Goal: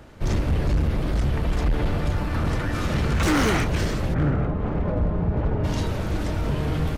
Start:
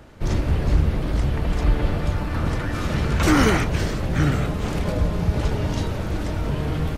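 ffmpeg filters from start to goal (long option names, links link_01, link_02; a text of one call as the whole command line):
ffmpeg -i in.wav -filter_complex "[0:a]asplit=3[link_01][link_02][link_03];[link_01]afade=type=out:start_time=4.13:duration=0.02[link_04];[link_02]lowpass=1300,afade=type=in:start_time=4.13:duration=0.02,afade=type=out:start_time=5.63:duration=0.02[link_05];[link_03]afade=type=in:start_time=5.63:duration=0.02[link_06];[link_04][link_05][link_06]amix=inputs=3:normalize=0,asoftclip=type=hard:threshold=-17dB" out.wav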